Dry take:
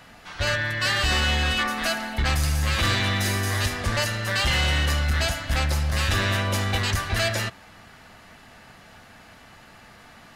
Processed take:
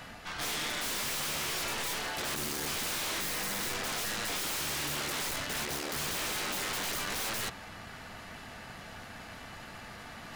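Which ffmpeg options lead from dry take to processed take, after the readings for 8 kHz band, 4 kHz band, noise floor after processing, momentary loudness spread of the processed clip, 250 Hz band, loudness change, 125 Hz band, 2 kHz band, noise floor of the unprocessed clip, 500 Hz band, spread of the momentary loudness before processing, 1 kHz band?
−2.0 dB, −8.5 dB, −47 dBFS, 14 LU, −10.5 dB, −9.0 dB, −22.0 dB, −11.0 dB, −49 dBFS, −10.0 dB, 4 LU, −8.5 dB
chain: -af "aeval=exprs='0.141*(cos(1*acos(clip(val(0)/0.141,-1,1)))-cos(1*PI/2))+0.0447*(cos(4*acos(clip(val(0)/0.141,-1,1)))-cos(4*PI/2))':channel_layout=same,afftfilt=real='re*lt(hypot(re,im),0.126)':imag='im*lt(hypot(re,im),0.126)':win_size=1024:overlap=0.75,areverse,acompressor=mode=upward:threshold=-40dB:ratio=2.5,areverse,aeval=exprs='0.0335*(abs(mod(val(0)/0.0335+3,4)-2)-1)':channel_layout=same"

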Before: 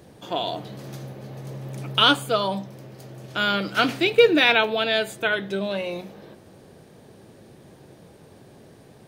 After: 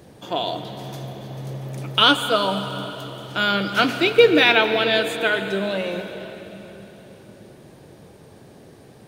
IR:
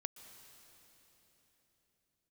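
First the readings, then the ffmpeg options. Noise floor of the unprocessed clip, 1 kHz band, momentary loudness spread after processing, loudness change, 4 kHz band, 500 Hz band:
−50 dBFS, +2.5 dB, 19 LU, +2.0 dB, +2.5 dB, +2.5 dB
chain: -filter_complex "[1:a]atrim=start_sample=2205[link_01];[0:a][link_01]afir=irnorm=-1:irlink=0,volume=5.5dB"

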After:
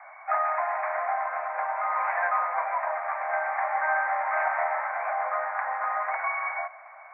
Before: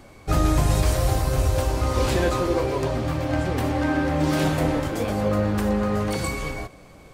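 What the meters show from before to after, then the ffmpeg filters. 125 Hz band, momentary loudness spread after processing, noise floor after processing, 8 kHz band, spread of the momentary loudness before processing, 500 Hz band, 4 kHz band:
below −40 dB, 5 LU, −47 dBFS, below −40 dB, 5 LU, −8.0 dB, below −35 dB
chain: -filter_complex "[0:a]asplit=2[link_01][link_02];[link_02]acompressor=threshold=-29dB:ratio=6,volume=-0.5dB[link_03];[link_01][link_03]amix=inputs=2:normalize=0,asuperpass=centerf=1200:order=20:qfactor=0.75,volume=2dB"

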